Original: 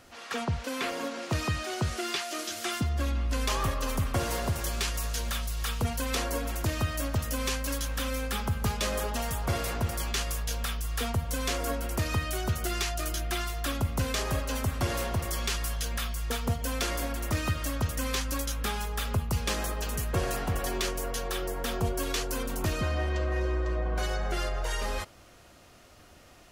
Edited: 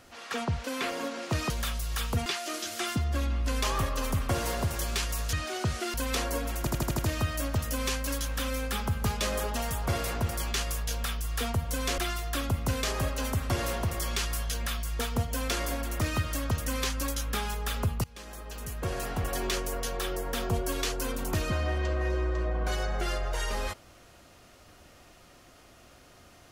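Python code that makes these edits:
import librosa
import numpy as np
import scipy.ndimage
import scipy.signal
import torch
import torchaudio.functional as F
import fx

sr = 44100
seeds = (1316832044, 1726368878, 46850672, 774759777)

y = fx.edit(x, sr, fx.swap(start_s=1.5, length_s=0.61, other_s=5.18, other_length_s=0.76),
    fx.stutter(start_s=6.59, slice_s=0.08, count=6),
    fx.cut(start_s=11.58, length_s=1.71),
    fx.fade_in_from(start_s=19.35, length_s=1.37, floor_db=-23.5), tone=tone)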